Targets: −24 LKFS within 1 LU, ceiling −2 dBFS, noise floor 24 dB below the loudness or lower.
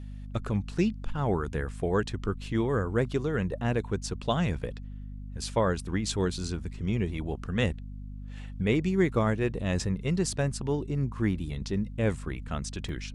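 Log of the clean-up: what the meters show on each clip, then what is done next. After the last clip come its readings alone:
number of dropouts 1; longest dropout 1.8 ms; mains hum 50 Hz; hum harmonics up to 250 Hz; level of the hum −37 dBFS; integrated loudness −30.0 LKFS; sample peak −12.5 dBFS; target loudness −24.0 LKFS
→ repair the gap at 0:12.89, 1.8 ms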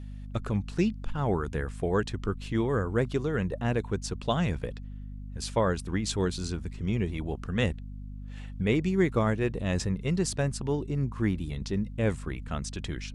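number of dropouts 0; mains hum 50 Hz; hum harmonics up to 250 Hz; level of the hum −37 dBFS
→ mains-hum notches 50/100/150/200/250 Hz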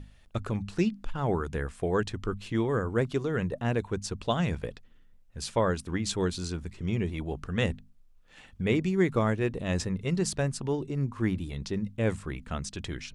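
mains hum none found; integrated loudness −30.5 LKFS; sample peak −13.0 dBFS; target loudness −24.0 LKFS
→ level +6.5 dB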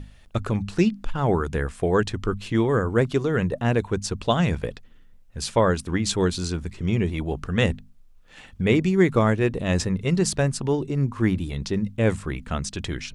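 integrated loudness −24.0 LKFS; sample peak −6.5 dBFS; background noise floor −50 dBFS

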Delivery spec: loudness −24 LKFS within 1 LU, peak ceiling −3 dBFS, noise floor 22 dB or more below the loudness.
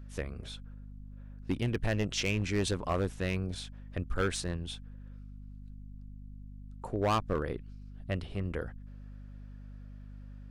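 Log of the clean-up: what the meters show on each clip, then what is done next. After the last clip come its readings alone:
share of clipped samples 0.8%; peaks flattened at −23.0 dBFS; mains hum 50 Hz; hum harmonics up to 250 Hz; level of the hum −44 dBFS; integrated loudness −34.0 LKFS; sample peak −23.0 dBFS; target loudness −24.0 LKFS
→ clipped peaks rebuilt −23 dBFS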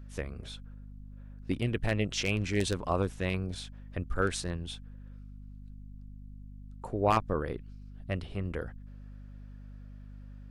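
share of clipped samples 0.0%; mains hum 50 Hz; hum harmonics up to 250 Hz; level of the hum −44 dBFS
→ hum removal 50 Hz, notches 5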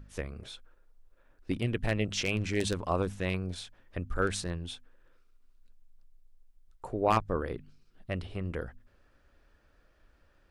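mains hum none found; integrated loudness −33.0 LKFS; sample peak −12.5 dBFS; target loudness −24.0 LKFS
→ level +9 dB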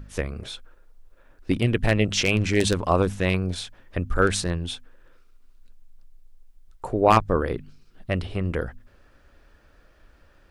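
integrated loudness −24.0 LKFS; sample peak −3.5 dBFS; background noise floor −57 dBFS

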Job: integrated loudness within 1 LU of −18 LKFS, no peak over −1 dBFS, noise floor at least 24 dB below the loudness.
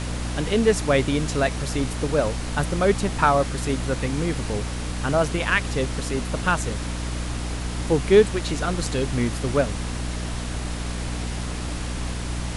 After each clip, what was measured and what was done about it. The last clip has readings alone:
mains hum 60 Hz; hum harmonics up to 300 Hz; level of the hum −27 dBFS; background noise floor −30 dBFS; target noise floor −48 dBFS; integrated loudness −24.0 LKFS; sample peak −4.0 dBFS; target loudness −18.0 LKFS
→ mains-hum notches 60/120/180/240/300 Hz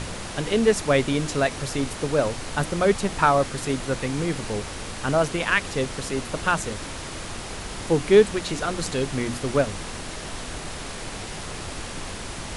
mains hum none found; background noise floor −35 dBFS; target noise floor −49 dBFS
→ noise reduction from a noise print 14 dB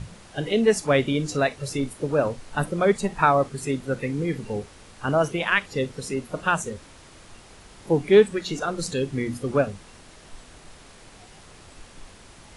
background noise floor −49 dBFS; integrated loudness −24.0 LKFS; sample peak −5.0 dBFS; target loudness −18.0 LKFS
→ level +6 dB
brickwall limiter −1 dBFS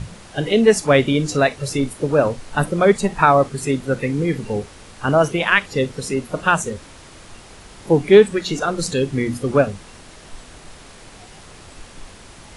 integrated loudness −18.5 LKFS; sample peak −1.0 dBFS; background noise floor −43 dBFS

